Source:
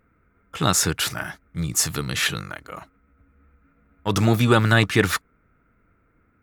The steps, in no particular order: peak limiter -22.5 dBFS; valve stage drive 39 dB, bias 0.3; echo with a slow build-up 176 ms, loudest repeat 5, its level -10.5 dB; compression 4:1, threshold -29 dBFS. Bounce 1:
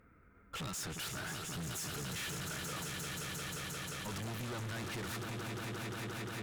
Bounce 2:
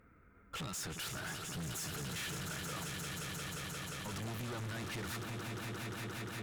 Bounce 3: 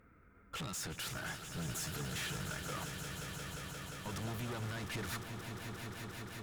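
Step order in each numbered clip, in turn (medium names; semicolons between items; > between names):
compression > echo with a slow build-up > valve stage > peak limiter; compression > peak limiter > echo with a slow build-up > valve stage; compression > peak limiter > valve stage > echo with a slow build-up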